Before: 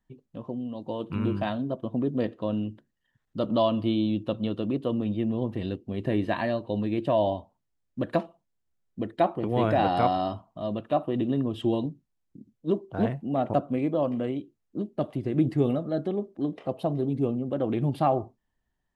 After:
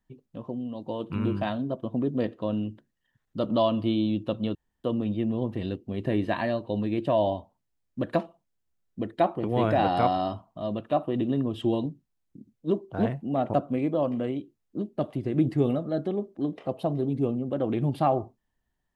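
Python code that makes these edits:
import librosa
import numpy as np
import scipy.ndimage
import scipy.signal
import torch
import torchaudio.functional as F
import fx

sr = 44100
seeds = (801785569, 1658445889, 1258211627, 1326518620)

y = fx.edit(x, sr, fx.room_tone_fill(start_s=4.55, length_s=0.29), tone=tone)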